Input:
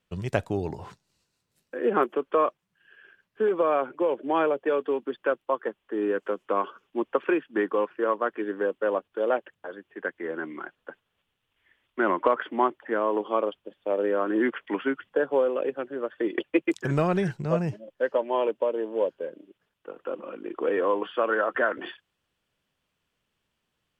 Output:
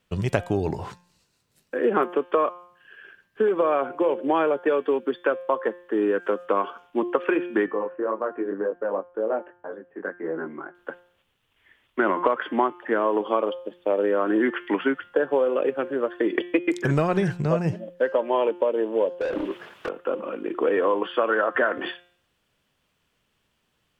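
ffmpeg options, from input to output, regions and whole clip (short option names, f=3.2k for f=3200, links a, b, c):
-filter_complex "[0:a]asettb=1/sr,asplit=3[a][b][c];[a]atrim=end=7.664[d];[b]atrim=start=7.66:end=10.75,asetpts=PTS-STARTPTS,afade=t=in:d=0.004:c=qsin,afade=t=out:st=3.086:d=0.004:c=qsin,flanger=delay=18:depth=3.4:speed=1.9,lowpass=1.2k,acompressor=threshold=-30dB:ratio=2:attack=3.2:release=140:knee=1:detection=peak[e];[c]atrim=start=10.746[f];[d][e]acrossfade=d=0.004:c1=hsin:c2=qsin[g];[g][f]acrossfade=d=0.004:c1=qsin:c2=hsin,asettb=1/sr,asplit=3[h][i][j];[h]atrim=end=19.214[k];[i]atrim=start=19.21:end=19.89,asetpts=PTS-STARTPTS,afade=t=in:d=0.004:c=qsin,afade=t=out:st=0.676:d=0.004:c=qsin,acompressor=threshold=-39dB:ratio=12:attack=3.2:release=140:knee=1:detection=peak,asplit=2[l][m];[m]highpass=f=720:p=1,volume=36dB,asoftclip=type=tanh:threshold=-25dB[n];[l][n]amix=inputs=2:normalize=0,lowpass=f=1.6k:p=1,volume=-6dB,asplit=2[o][p];[p]adelay=25,volume=-12.5dB[q];[o][q]amix=inputs=2:normalize=0,atrim=end_sample=29988[r];[j]atrim=start=19.886[s];[k][r]acrossfade=d=0.004:c1=hsin:c2=qsin[t];[t][s]acrossfade=d=0.004:c1=qsin:c2=hsin,bandreject=f=176.5:t=h:w=4,bandreject=f=353:t=h:w=4,bandreject=f=529.5:t=h:w=4,bandreject=f=706:t=h:w=4,bandreject=f=882.5:t=h:w=4,bandreject=f=1.059k:t=h:w=4,bandreject=f=1.2355k:t=h:w=4,bandreject=f=1.412k:t=h:w=4,bandreject=f=1.5885k:t=h:w=4,bandreject=f=1.765k:t=h:w=4,bandreject=f=1.9415k:t=h:w=4,bandreject=f=2.118k:t=h:w=4,bandreject=f=2.2945k:t=h:w=4,bandreject=f=2.471k:t=h:w=4,bandreject=f=2.6475k:t=h:w=4,bandreject=f=2.824k:t=h:w=4,bandreject=f=3.0005k:t=h:w=4,bandreject=f=3.177k:t=h:w=4,bandreject=f=3.3535k:t=h:w=4,bandreject=f=3.53k:t=h:w=4,acompressor=threshold=-26dB:ratio=3,volume=7dB"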